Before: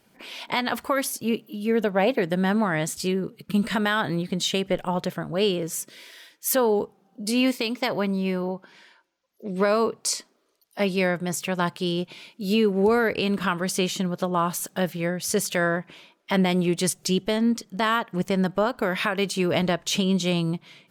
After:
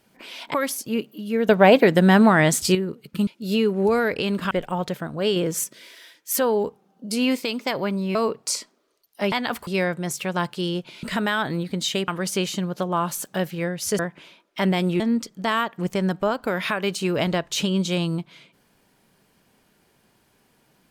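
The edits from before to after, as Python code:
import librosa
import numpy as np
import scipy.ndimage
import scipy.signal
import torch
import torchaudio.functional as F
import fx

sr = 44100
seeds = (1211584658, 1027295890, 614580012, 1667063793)

y = fx.edit(x, sr, fx.move(start_s=0.54, length_s=0.35, to_s=10.9),
    fx.clip_gain(start_s=1.84, length_s=1.26, db=8.0),
    fx.swap(start_s=3.62, length_s=1.05, other_s=12.26, other_length_s=1.24),
    fx.clip_gain(start_s=5.52, length_s=0.28, db=4.5),
    fx.cut(start_s=8.31, length_s=1.42),
    fx.cut(start_s=15.41, length_s=0.3),
    fx.cut(start_s=16.72, length_s=0.63), tone=tone)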